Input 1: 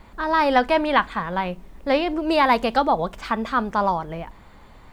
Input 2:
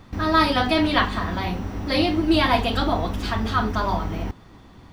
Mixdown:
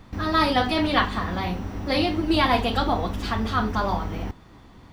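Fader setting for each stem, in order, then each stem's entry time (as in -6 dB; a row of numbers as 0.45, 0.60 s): -10.5, -2.0 dB; 0.00, 0.00 s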